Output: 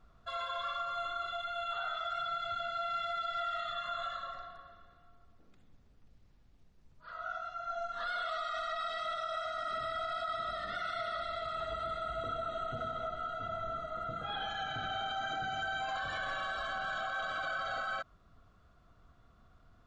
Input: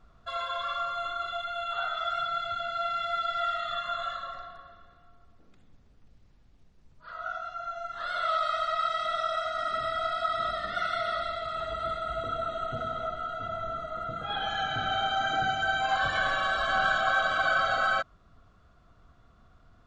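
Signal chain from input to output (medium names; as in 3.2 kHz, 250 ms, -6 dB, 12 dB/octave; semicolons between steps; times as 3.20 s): 7.69–9.00 s: comb 4.2 ms, depth 92%; peak limiter -25 dBFS, peak gain reduction 11 dB; trim -4 dB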